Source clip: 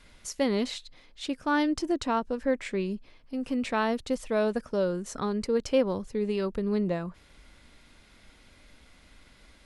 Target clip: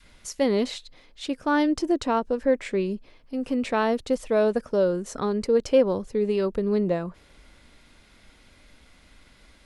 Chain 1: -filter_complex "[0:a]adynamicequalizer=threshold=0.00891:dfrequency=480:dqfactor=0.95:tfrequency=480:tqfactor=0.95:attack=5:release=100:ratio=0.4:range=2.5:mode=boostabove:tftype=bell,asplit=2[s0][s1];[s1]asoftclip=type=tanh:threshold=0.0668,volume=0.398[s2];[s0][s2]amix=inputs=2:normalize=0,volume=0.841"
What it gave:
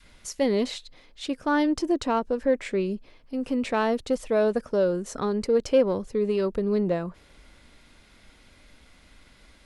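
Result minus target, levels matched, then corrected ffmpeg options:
saturation: distortion +13 dB
-filter_complex "[0:a]adynamicequalizer=threshold=0.00891:dfrequency=480:dqfactor=0.95:tfrequency=480:tqfactor=0.95:attack=5:release=100:ratio=0.4:range=2.5:mode=boostabove:tftype=bell,asplit=2[s0][s1];[s1]asoftclip=type=tanh:threshold=0.237,volume=0.398[s2];[s0][s2]amix=inputs=2:normalize=0,volume=0.841"

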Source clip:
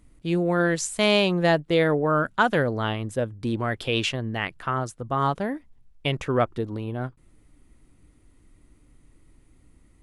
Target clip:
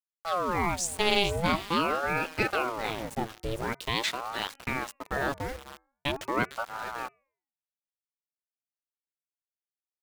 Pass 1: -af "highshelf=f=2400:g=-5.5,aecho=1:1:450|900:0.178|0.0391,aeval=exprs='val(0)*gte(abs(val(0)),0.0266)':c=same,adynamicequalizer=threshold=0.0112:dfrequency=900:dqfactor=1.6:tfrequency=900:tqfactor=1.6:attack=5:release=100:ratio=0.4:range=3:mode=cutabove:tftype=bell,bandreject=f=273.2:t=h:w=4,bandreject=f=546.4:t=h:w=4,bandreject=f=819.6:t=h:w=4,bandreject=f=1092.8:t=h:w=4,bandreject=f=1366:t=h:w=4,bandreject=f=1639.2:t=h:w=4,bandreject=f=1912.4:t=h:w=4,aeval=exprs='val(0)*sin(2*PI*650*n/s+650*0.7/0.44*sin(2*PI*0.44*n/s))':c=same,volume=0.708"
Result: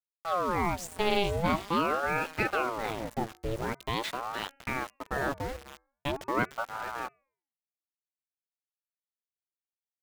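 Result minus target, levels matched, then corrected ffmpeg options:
4 kHz band -4.5 dB
-af "highshelf=f=2400:g=5,aecho=1:1:450|900:0.178|0.0391,aeval=exprs='val(0)*gte(abs(val(0)),0.0266)':c=same,adynamicequalizer=threshold=0.0112:dfrequency=900:dqfactor=1.6:tfrequency=900:tqfactor=1.6:attack=5:release=100:ratio=0.4:range=3:mode=cutabove:tftype=bell,bandreject=f=273.2:t=h:w=4,bandreject=f=546.4:t=h:w=4,bandreject=f=819.6:t=h:w=4,bandreject=f=1092.8:t=h:w=4,bandreject=f=1366:t=h:w=4,bandreject=f=1639.2:t=h:w=4,bandreject=f=1912.4:t=h:w=4,aeval=exprs='val(0)*sin(2*PI*650*n/s+650*0.7/0.44*sin(2*PI*0.44*n/s))':c=same,volume=0.708"

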